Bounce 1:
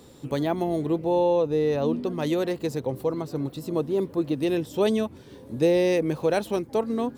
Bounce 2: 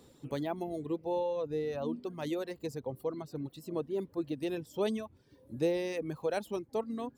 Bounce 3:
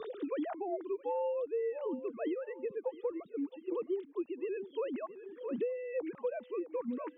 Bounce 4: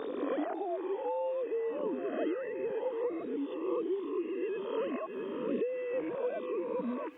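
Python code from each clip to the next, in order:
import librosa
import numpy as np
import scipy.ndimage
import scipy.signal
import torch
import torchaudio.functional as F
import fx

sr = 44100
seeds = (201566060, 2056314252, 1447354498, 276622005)

y1 = fx.dereverb_blind(x, sr, rt60_s=1.5)
y1 = y1 * librosa.db_to_amplitude(-8.5)
y2 = fx.sine_speech(y1, sr)
y2 = fx.echo_feedback(y2, sr, ms=663, feedback_pct=28, wet_db=-19.5)
y2 = fx.band_squash(y2, sr, depth_pct=100)
y2 = y2 * librosa.db_to_amplitude(-2.0)
y3 = fx.spec_swells(y2, sr, rise_s=1.02)
y3 = fx.recorder_agc(y3, sr, target_db=-31.5, rise_db_per_s=72.0, max_gain_db=30)
y3 = fx.echo_wet_highpass(y3, sr, ms=553, feedback_pct=52, hz=1500.0, wet_db=-8)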